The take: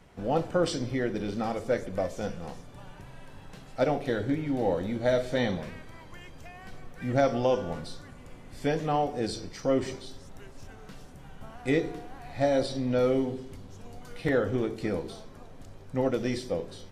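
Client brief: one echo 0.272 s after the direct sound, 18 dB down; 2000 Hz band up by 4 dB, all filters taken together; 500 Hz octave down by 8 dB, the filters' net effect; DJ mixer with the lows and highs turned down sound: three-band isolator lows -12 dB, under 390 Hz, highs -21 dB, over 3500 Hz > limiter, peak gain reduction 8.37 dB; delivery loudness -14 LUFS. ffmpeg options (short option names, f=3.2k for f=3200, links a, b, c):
-filter_complex "[0:a]acrossover=split=390 3500:gain=0.251 1 0.0891[a][b][c];[a][b][c]amix=inputs=3:normalize=0,equalizer=f=500:t=o:g=-7.5,equalizer=f=2k:t=o:g=6,aecho=1:1:272:0.126,volume=23.5dB,alimiter=limit=-0.5dB:level=0:latency=1"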